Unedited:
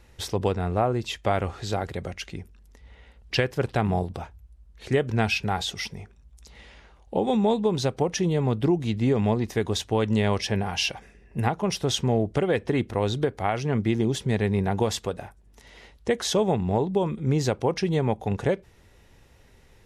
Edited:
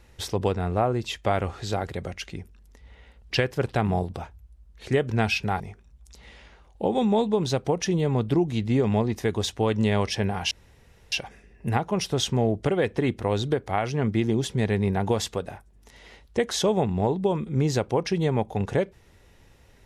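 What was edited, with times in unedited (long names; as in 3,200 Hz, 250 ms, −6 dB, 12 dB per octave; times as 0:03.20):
0:05.60–0:05.92: remove
0:10.83: splice in room tone 0.61 s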